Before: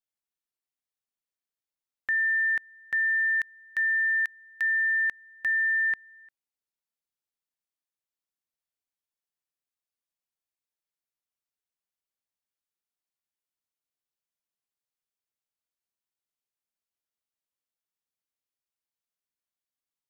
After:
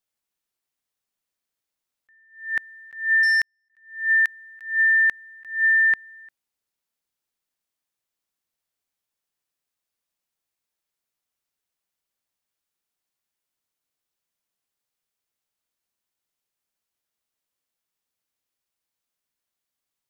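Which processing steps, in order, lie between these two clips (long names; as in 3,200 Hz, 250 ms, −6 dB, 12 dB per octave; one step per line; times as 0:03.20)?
0:03.23–0:03.70: power curve on the samples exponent 2
level that may rise only so fast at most 130 dB per second
level +7.5 dB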